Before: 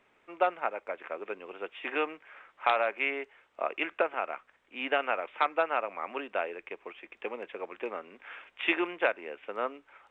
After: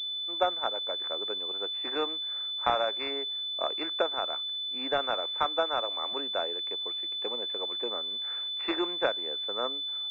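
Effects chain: 5.38–6.13 s: steep high-pass 230 Hz 72 dB/octave; class-D stage that switches slowly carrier 3.5 kHz

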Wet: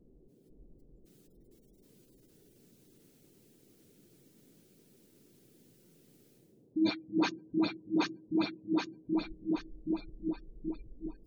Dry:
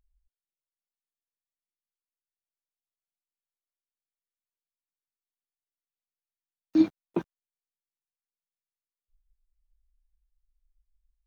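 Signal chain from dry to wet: backward echo that repeats 388 ms, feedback 64%, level -5 dB; peaking EQ 150 Hz +3 dB 1.7 oct; on a send at -23 dB: reverberation RT60 1.0 s, pre-delay 3 ms; on the sum: level rider gain up to 14 dB; treble shelf 2.2 kHz +5.5 dB; band-stop 1.1 kHz, Q 19; phase dispersion highs, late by 78 ms, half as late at 690 Hz; reverse; compression 8:1, threshold -35 dBFS, peak gain reduction 26.5 dB; reverse; spectral gate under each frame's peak -25 dB strong; band noise 110–430 Hz -71 dBFS; trim +7 dB

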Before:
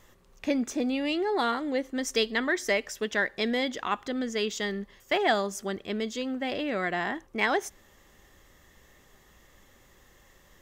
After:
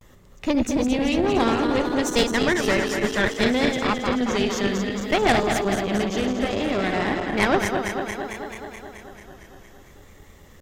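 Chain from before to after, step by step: backward echo that repeats 111 ms, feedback 84%, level -6 dB; Chebyshev shaper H 3 -10 dB, 4 -19 dB, 5 -19 dB, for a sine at -11.5 dBFS; bass shelf 400 Hz +8.5 dB; harmonic-percussive split percussive +4 dB; vibrato 0.61 Hz 75 cents; trim +4.5 dB

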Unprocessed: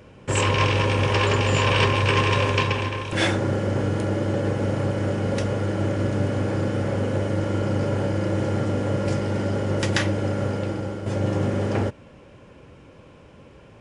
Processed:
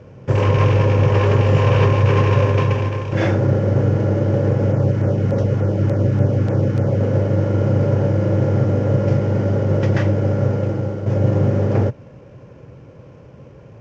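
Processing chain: CVSD coder 32 kbps; graphic EQ 125/500/4000 Hz +12/+6/-10 dB; 4.72–7.01 s: LFO notch saw down 3.4 Hz 400–5000 Hz

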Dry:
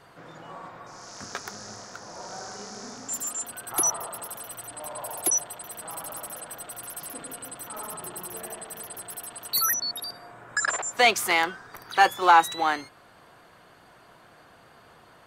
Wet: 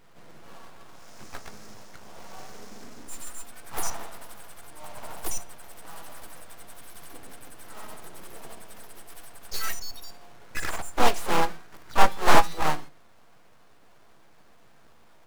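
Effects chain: square wave that keeps the level; dynamic bell 770 Hz, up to +7 dB, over -36 dBFS, Q 1.8; half-wave rectifier; harmony voices +3 st -6 dB, +7 st -6 dB; on a send at -11.5 dB: reverberation, pre-delay 4 ms; on the sum: loudspeaker Doppler distortion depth 0.85 ms; trim -8 dB

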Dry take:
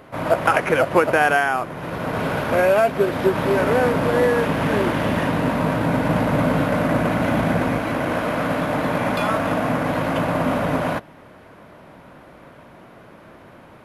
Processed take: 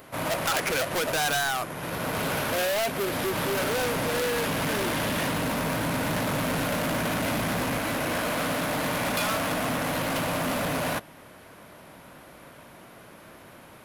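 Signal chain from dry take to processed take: overload inside the chain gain 21 dB; pre-emphasis filter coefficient 0.8; trim +9 dB

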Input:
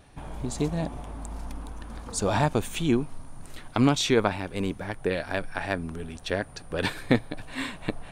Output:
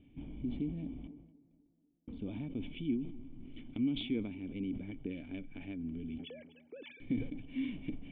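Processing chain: 6.18–7.00 s: formants replaced by sine waves; compression 4:1, threshold -32 dBFS, peak gain reduction 14 dB; cascade formant filter i; 1.07–2.08 s: gate -41 dBFS, range -47 dB; tape echo 245 ms, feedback 62%, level -18.5 dB, low-pass 1.4 kHz; decay stretcher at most 67 dB/s; trim +3.5 dB

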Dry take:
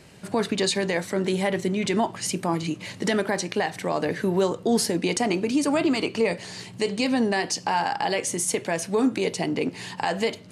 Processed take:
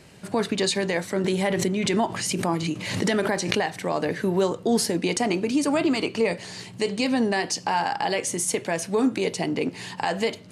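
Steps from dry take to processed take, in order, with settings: 1.24–3.72 s: swell ahead of each attack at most 45 dB/s

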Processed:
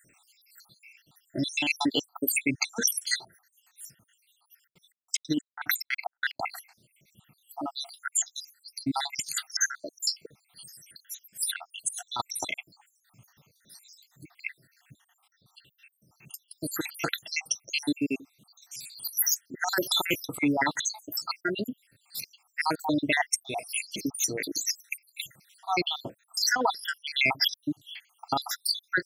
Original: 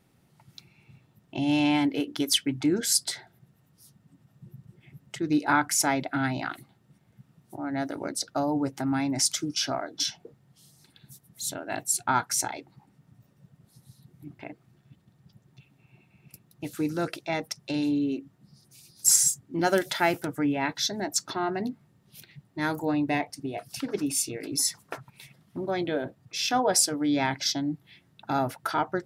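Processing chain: random holes in the spectrogram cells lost 79%; tilt shelf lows -9.5 dB, about 1.1 kHz; compressor with a negative ratio -31 dBFS, ratio -0.5; 4.51–6.51 s: trance gate "x.xx..x.xx..xx" 183 bpm -60 dB; trim +5.5 dB

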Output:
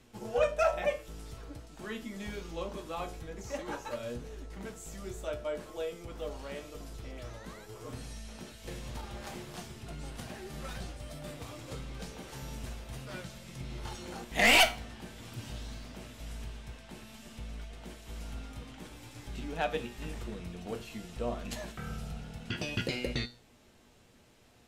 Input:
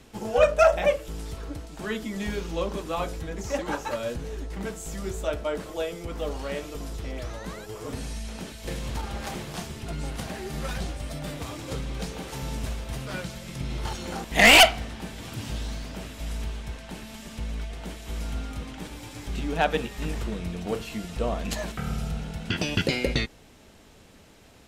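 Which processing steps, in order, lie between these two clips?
feedback comb 120 Hz, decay 0.31 s, harmonics all, mix 70%; trim -1.5 dB

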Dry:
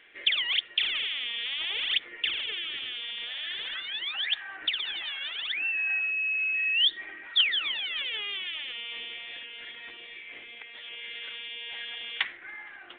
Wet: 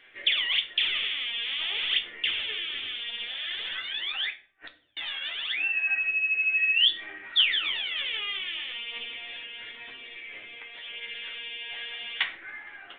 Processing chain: flange 0.3 Hz, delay 7.6 ms, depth 8.3 ms, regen +28%; 4.30–4.97 s: inverted gate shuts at -35 dBFS, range -40 dB; reverberation RT60 0.55 s, pre-delay 7 ms, DRR 4.5 dB; trim +4 dB

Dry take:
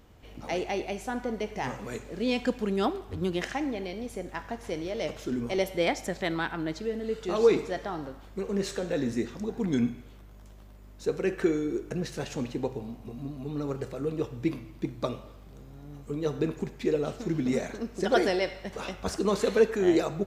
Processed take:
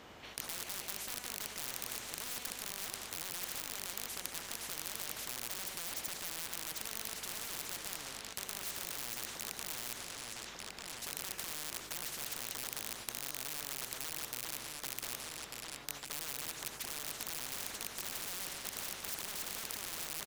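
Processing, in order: rattle on loud lows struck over -38 dBFS, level -24 dBFS; high-pass 760 Hz 6 dB/octave; gate -50 dBFS, range -12 dB; low-pass 2.1 kHz 6 dB/octave; peaking EQ 1 kHz -6.5 dB 2.9 oct; in parallel at +1 dB: compressor with a negative ratio -40 dBFS; on the sum: peak limiter -25 dBFS, peak gain reduction 8 dB; wavefolder -36 dBFS; delay 1194 ms -16 dB; reverberation RT60 1.3 s, pre-delay 62 ms, DRR 19.5 dB; spectrum-flattening compressor 10:1; trim +17 dB

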